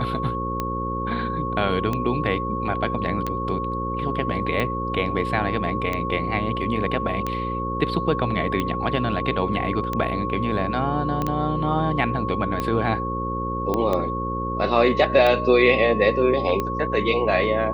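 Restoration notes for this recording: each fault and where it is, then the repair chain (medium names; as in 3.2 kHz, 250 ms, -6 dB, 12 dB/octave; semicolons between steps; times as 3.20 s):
buzz 60 Hz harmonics 9 -29 dBFS
tick 45 rpm -12 dBFS
whine 1.1 kHz -27 dBFS
11.22 s: pop -13 dBFS
13.74 s: pop -11 dBFS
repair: de-click; de-hum 60 Hz, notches 9; band-stop 1.1 kHz, Q 30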